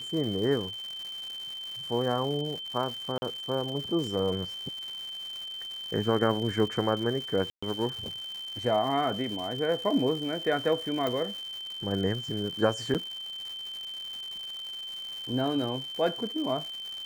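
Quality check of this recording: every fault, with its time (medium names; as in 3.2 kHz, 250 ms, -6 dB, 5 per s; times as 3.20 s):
crackle 280 per s -36 dBFS
whine 3.1 kHz -36 dBFS
3.18–3.22 s: dropout 40 ms
7.50–7.62 s: dropout 125 ms
11.07 s: pop
12.94–12.95 s: dropout 7.6 ms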